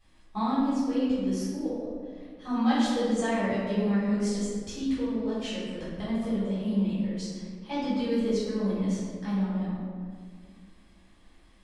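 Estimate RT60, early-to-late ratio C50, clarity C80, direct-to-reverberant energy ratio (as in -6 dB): 1.9 s, -2.0 dB, 0.5 dB, -12.0 dB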